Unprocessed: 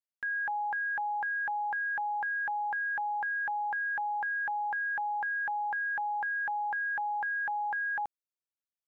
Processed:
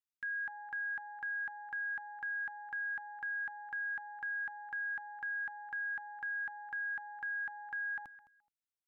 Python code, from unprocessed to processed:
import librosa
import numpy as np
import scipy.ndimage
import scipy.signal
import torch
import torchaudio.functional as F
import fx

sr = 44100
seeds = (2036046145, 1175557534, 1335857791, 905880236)

y = fx.band_shelf(x, sr, hz=610.0, db=-11.0, octaves=1.7)
y = fx.echo_feedback(y, sr, ms=212, feedback_pct=18, wet_db=-17.0)
y = y * librosa.db_to_amplitude(-5.0)